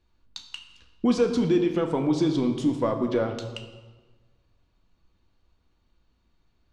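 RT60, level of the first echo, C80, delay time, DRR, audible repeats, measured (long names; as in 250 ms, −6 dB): 1.3 s, no echo audible, 9.5 dB, no echo audible, 4.0 dB, no echo audible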